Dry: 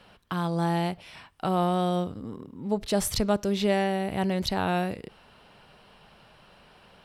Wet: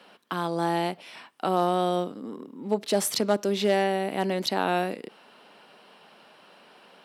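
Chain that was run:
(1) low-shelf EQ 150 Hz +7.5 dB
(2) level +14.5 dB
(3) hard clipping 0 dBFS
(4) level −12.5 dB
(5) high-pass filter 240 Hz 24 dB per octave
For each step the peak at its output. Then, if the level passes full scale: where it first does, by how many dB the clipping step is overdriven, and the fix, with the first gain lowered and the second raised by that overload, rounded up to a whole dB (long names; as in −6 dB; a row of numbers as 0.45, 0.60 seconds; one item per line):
−11.0, +3.5, 0.0, −12.5, −10.5 dBFS
step 2, 3.5 dB
step 2 +10.5 dB, step 4 −8.5 dB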